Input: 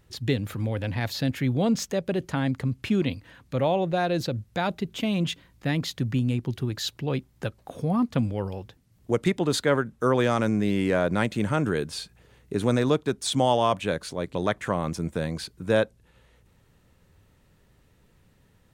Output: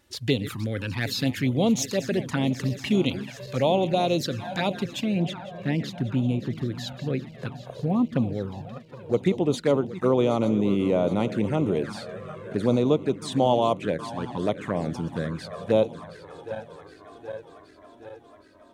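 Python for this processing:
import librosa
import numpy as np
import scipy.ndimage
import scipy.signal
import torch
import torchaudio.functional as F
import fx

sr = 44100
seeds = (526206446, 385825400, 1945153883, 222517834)

y = fx.reverse_delay_fb(x, sr, ms=385, feedback_pct=80, wet_db=-14)
y = fx.high_shelf(y, sr, hz=2400.0, db=fx.steps((0.0, 4.5), (4.99, -9.0)))
y = fx.env_flanger(y, sr, rest_ms=3.5, full_db=-20.5)
y = fx.highpass(y, sr, hz=170.0, slope=6)
y = fx.high_shelf(y, sr, hz=12000.0, db=-4.0)
y = y * 10.0 ** (3.5 / 20.0)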